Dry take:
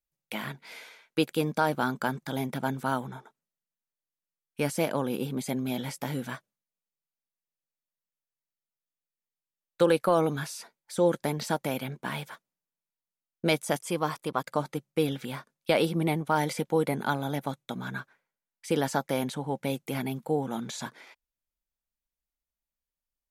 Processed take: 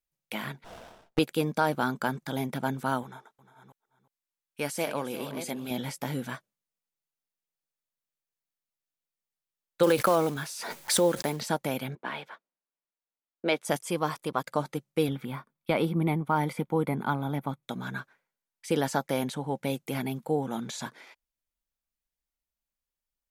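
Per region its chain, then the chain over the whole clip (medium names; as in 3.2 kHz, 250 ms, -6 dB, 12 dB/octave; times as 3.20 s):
0.64–1.19 s: peaking EQ 690 Hz +13 dB 0.64 oct + sliding maximum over 17 samples
3.03–5.71 s: chunks repeated in reverse 347 ms, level -10 dB + bass shelf 380 Hz -9 dB + delay 356 ms -15 dB
9.83–11.41 s: block-companded coder 5-bit + bass shelf 170 Hz -5.5 dB + swell ahead of each attack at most 41 dB/s
11.95–13.65 s: three-band isolator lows -18 dB, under 250 Hz, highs -18 dB, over 4.2 kHz + tape noise reduction on one side only decoder only
15.08–17.63 s: peaking EQ 6.2 kHz -13.5 dB 1.9 oct + comb 0.9 ms, depth 35%
whole clip: none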